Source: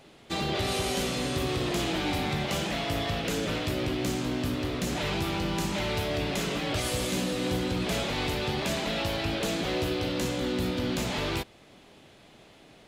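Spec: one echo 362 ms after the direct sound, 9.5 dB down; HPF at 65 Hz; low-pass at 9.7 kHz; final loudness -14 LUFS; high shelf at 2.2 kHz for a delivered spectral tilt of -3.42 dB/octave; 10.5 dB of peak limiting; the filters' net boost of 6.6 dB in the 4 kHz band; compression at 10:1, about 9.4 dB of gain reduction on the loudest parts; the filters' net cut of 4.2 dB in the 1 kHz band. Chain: high-pass 65 Hz; low-pass 9.7 kHz; peaking EQ 1 kHz -7 dB; treble shelf 2.2 kHz +3 dB; peaking EQ 4 kHz +6 dB; compression 10:1, threshold -34 dBFS; peak limiter -34 dBFS; delay 362 ms -9.5 dB; trim +27 dB

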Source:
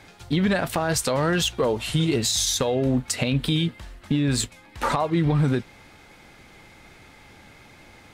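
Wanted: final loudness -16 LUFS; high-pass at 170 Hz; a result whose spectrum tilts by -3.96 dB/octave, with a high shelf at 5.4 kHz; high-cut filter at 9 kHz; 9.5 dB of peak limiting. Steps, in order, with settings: high-pass 170 Hz; low-pass 9 kHz; treble shelf 5.4 kHz +3 dB; trim +11.5 dB; peak limiter -6 dBFS

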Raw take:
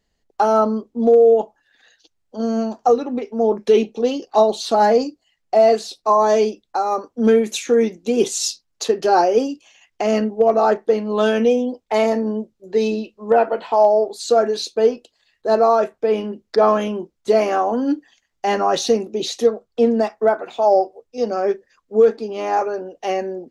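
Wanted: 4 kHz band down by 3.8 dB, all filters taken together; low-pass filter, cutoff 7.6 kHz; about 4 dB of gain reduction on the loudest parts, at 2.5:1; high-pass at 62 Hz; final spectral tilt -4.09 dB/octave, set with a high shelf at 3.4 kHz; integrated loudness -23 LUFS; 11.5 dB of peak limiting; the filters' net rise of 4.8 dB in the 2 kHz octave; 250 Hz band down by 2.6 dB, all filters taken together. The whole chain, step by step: high-pass 62 Hz; low-pass 7.6 kHz; peaking EQ 250 Hz -3 dB; peaking EQ 2 kHz +8.5 dB; treble shelf 3.4 kHz -4 dB; peaking EQ 4 kHz -4 dB; compression 2.5:1, threshold -15 dBFS; trim +4 dB; peak limiter -13.5 dBFS

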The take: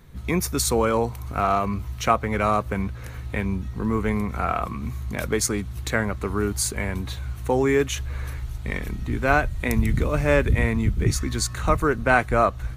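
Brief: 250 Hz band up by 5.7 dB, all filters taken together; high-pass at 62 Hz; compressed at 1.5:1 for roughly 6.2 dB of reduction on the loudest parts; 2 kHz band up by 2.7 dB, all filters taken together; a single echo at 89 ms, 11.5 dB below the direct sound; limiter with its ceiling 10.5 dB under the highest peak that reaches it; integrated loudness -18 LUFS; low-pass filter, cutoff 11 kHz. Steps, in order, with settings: high-pass 62 Hz; low-pass 11 kHz; peaking EQ 250 Hz +7 dB; peaking EQ 2 kHz +3.5 dB; compression 1.5:1, threshold -30 dBFS; peak limiter -19 dBFS; delay 89 ms -11.5 dB; trim +11.5 dB

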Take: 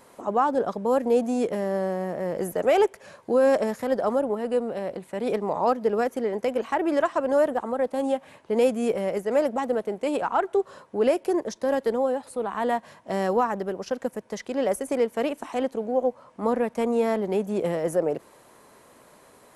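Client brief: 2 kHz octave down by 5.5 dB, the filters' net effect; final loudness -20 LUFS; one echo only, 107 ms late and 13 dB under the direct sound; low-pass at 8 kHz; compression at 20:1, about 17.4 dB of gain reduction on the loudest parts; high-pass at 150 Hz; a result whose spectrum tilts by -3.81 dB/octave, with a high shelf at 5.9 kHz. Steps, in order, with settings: high-pass 150 Hz; low-pass 8 kHz; peaking EQ 2 kHz -8 dB; treble shelf 5.9 kHz +7.5 dB; compression 20:1, threshold -34 dBFS; delay 107 ms -13 dB; trim +19 dB

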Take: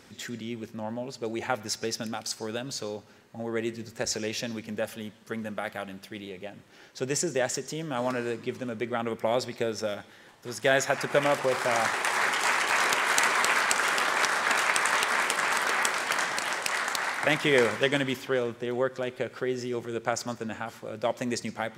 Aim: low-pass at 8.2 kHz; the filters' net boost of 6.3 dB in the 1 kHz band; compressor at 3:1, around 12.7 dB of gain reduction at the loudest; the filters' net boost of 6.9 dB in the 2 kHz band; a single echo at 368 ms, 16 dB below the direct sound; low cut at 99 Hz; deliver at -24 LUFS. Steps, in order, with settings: high-pass 99 Hz; low-pass 8.2 kHz; peaking EQ 1 kHz +6 dB; peaking EQ 2 kHz +6.5 dB; compression 3:1, threshold -32 dBFS; delay 368 ms -16 dB; trim +9 dB

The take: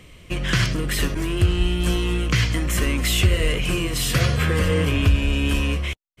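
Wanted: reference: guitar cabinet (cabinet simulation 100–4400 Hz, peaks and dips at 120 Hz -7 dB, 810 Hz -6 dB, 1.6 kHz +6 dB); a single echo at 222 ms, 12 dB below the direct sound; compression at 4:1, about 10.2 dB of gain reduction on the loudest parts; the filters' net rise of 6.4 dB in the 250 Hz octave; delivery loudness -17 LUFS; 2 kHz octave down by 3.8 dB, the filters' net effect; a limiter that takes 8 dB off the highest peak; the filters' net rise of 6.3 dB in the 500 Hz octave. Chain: peaking EQ 250 Hz +8 dB; peaking EQ 500 Hz +5.5 dB; peaking EQ 2 kHz -8.5 dB; compression 4:1, threshold -23 dBFS; peak limiter -19 dBFS; cabinet simulation 100–4400 Hz, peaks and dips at 120 Hz -7 dB, 810 Hz -6 dB, 1.6 kHz +6 dB; delay 222 ms -12 dB; trim +13 dB

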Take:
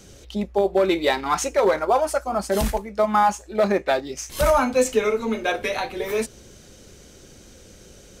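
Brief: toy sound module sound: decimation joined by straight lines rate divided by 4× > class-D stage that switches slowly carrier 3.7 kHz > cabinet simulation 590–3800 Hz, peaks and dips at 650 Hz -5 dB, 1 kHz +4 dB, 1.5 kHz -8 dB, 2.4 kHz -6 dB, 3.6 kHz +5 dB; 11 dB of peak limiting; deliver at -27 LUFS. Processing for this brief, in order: peak limiter -17.5 dBFS; decimation joined by straight lines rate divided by 4×; class-D stage that switches slowly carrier 3.7 kHz; cabinet simulation 590–3800 Hz, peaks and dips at 650 Hz -5 dB, 1 kHz +4 dB, 1.5 kHz -8 dB, 2.4 kHz -6 dB, 3.6 kHz +5 dB; trim +6 dB

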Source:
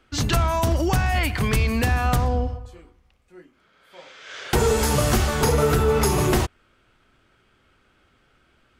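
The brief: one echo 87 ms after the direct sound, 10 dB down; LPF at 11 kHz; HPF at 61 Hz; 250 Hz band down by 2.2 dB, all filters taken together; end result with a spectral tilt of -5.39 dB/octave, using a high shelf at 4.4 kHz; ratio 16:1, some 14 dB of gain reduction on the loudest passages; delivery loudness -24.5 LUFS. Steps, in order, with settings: high-pass 61 Hz; low-pass 11 kHz; peaking EQ 250 Hz -3 dB; treble shelf 4.4 kHz -9 dB; compression 16:1, threshold -31 dBFS; delay 87 ms -10 dB; trim +11 dB

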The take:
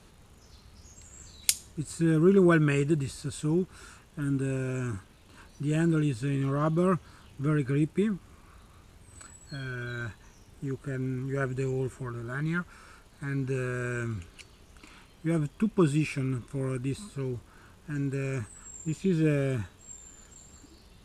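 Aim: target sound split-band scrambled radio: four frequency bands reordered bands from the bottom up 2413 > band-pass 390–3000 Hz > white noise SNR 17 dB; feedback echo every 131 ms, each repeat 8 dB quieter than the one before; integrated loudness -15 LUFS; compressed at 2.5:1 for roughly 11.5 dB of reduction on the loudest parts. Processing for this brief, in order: compression 2.5:1, threshold -39 dBFS; feedback delay 131 ms, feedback 40%, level -8 dB; four frequency bands reordered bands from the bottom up 2413; band-pass 390–3000 Hz; white noise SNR 17 dB; trim +23.5 dB

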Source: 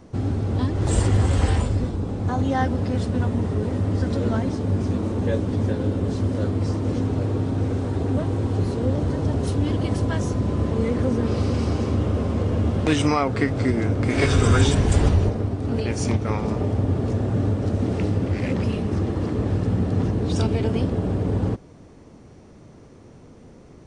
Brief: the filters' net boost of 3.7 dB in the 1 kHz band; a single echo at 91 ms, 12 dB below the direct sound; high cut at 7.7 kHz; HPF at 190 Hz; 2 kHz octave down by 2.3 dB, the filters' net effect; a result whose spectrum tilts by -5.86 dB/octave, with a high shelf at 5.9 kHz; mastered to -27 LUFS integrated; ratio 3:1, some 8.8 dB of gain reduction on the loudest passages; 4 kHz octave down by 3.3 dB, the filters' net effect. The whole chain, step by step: high-pass 190 Hz; low-pass 7.7 kHz; peaking EQ 1 kHz +6 dB; peaking EQ 2 kHz -4.5 dB; peaking EQ 4 kHz -6 dB; treble shelf 5.9 kHz +8.5 dB; compression 3:1, threshold -27 dBFS; delay 91 ms -12 dB; trim +3 dB

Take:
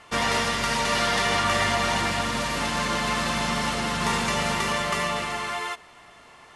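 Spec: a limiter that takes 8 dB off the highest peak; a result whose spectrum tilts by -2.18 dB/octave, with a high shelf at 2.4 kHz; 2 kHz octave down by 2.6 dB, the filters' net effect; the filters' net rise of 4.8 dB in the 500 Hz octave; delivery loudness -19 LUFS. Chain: peaking EQ 500 Hz +6 dB; peaking EQ 2 kHz -8 dB; treble shelf 2.4 kHz +9 dB; trim +4 dB; peak limiter -9.5 dBFS

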